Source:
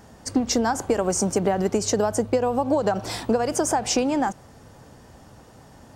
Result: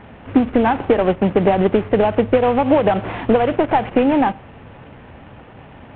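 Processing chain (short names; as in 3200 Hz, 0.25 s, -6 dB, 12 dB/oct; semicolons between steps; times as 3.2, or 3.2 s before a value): CVSD 16 kbps; on a send: reverb RT60 0.45 s, pre-delay 3 ms, DRR 21 dB; on the sum: gain +8 dB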